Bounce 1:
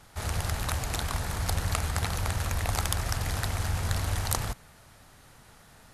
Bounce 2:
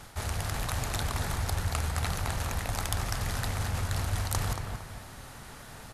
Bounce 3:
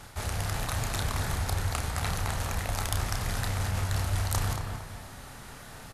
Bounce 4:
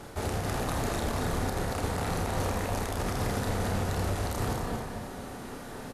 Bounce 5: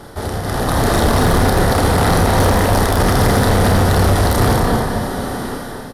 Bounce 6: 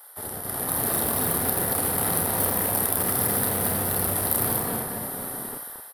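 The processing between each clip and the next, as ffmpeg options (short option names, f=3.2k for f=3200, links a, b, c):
-filter_complex "[0:a]bandreject=f=160.1:t=h:w=4,bandreject=f=320.2:t=h:w=4,bandreject=f=480.3:t=h:w=4,bandreject=f=640.4:t=h:w=4,bandreject=f=800.5:t=h:w=4,bandreject=f=960.6:t=h:w=4,bandreject=f=1.1207k:t=h:w=4,bandreject=f=1.2808k:t=h:w=4,bandreject=f=1.4409k:t=h:w=4,bandreject=f=1.601k:t=h:w=4,bandreject=f=1.7611k:t=h:w=4,bandreject=f=1.9212k:t=h:w=4,bandreject=f=2.0813k:t=h:w=4,bandreject=f=2.2414k:t=h:w=4,bandreject=f=2.4015k:t=h:w=4,bandreject=f=2.5616k:t=h:w=4,bandreject=f=2.7217k:t=h:w=4,bandreject=f=2.8818k:t=h:w=4,bandreject=f=3.0419k:t=h:w=4,bandreject=f=3.202k:t=h:w=4,bandreject=f=3.3621k:t=h:w=4,bandreject=f=3.5222k:t=h:w=4,bandreject=f=3.6823k:t=h:w=4,bandreject=f=3.8424k:t=h:w=4,bandreject=f=4.0025k:t=h:w=4,bandreject=f=4.1626k:t=h:w=4,bandreject=f=4.3227k:t=h:w=4,bandreject=f=4.4828k:t=h:w=4,bandreject=f=4.6429k:t=h:w=4,bandreject=f=4.803k:t=h:w=4,bandreject=f=4.9631k:t=h:w=4,bandreject=f=5.1232k:t=h:w=4,bandreject=f=5.2833k:t=h:w=4,bandreject=f=5.4434k:t=h:w=4,bandreject=f=5.6035k:t=h:w=4,bandreject=f=5.7636k:t=h:w=4,bandreject=f=5.9237k:t=h:w=4,areverse,acompressor=threshold=-36dB:ratio=6,areverse,asplit=2[a][b];[b]adelay=229,lowpass=f=2.4k:p=1,volume=-5dB,asplit=2[c][d];[d]adelay=229,lowpass=f=2.4k:p=1,volume=0.37,asplit=2[e][f];[f]adelay=229,lowpass=f=2.4k:p=1,volume=0.37,asplit=2[g][h];[h]adelay=229,lowpass=f=2.4k:p=1,volume=0.37,asplit=2[i][j];[j]adelay=229,lowpass=f=2.4k:p=1,volume=0.37[k];[a][c][e][g][i][k]amix=inputs=6:normalize=0,volume=7.5dB"
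-filter_complex "[0:a]asplit=2[a][b];[b]adelay=31,volume=-6.5dB[c];[a][c]amix=inputs=2:normalize=0"
-filter_complex "[0:a]equalizer=f=360:t=o:w=2.1:g=14,alimiter=limit=-19dB:level=0:latency=1:release=53,asplit=2[a][b];[b]aecho=0:1:46.65|81.63|233.2|265.3:0.355|0.355|0.282|0.316[c];[a][c]amix=inputs=2:normalize=0,volume=-2.5dB"
-af "superequalizer=12b=0.447:15b=0.501,dynaudnorm=f=550:g=3:m=11dB,volume=16dB,asoftclip=hard,volume=-16dB,volume=7.5dB"
-filter_complex "[0:a]highpass=120,acrossover=split=630|3400[a][b][c];[a]acrusher=bits=3:mix=0:aa=0.5[d];[d][b][c]amix=inputs=3:normalize=0,aexciter=amount=13.2:drive=5:freq=9.5k,volume=-14dB"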